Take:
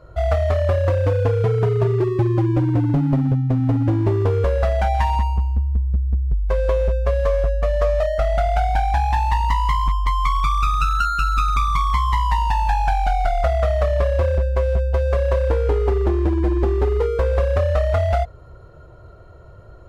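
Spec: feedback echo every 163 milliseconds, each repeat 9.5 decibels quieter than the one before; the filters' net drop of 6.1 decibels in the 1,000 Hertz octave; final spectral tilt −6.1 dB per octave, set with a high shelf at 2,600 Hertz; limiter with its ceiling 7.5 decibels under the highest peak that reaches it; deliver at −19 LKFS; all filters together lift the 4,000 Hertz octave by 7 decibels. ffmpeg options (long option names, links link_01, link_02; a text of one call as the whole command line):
ffmpeg -i in.wav -af "equalizer=frequency=1000:width_type=o:gain=-9,highshelf=frequency=2600:gain=3,equalizer=frequency=4000:width_type=o:gain=7,alimiter=limit=-15.5dB:level=0:latency=1,aecho=1:1:163|326|489|652:0.335|0.111|0.0365|0.012,volume=3.5dB" out.wav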